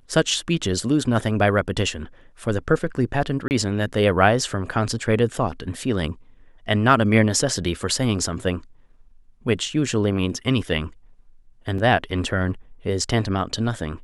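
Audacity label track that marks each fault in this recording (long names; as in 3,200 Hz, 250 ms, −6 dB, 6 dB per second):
3.480000	3.510000	drop-out 29 ms
11.780000	11.780000	drop-out 4 ms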